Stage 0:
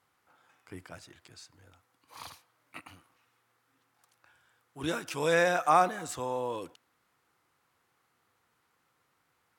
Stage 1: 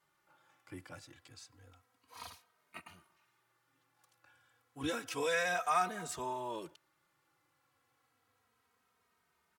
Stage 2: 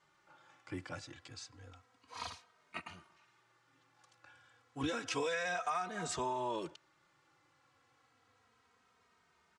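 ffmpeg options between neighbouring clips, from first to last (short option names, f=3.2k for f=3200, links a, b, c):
-filter_complex "[0:a]acrossover=split=1200[a][b];[a]alimiter=level_in=2dB:limit=-24dB:level=0:latency=1:release=212,volume=-2dB[c];[c][b]amix=inputs=2:normalize=0,asplit=2[d][e];[e]adelay=2.9,afreqshift=-0.3[f];[d][f]amix=inputs=2:normalize=1"
-af "lowpass=f=7.6k:w=0.5412,lowpass=f=7.6k:w=1.3066,acompressor=threshold=-38dB:ratio=12,volume=5.5dB"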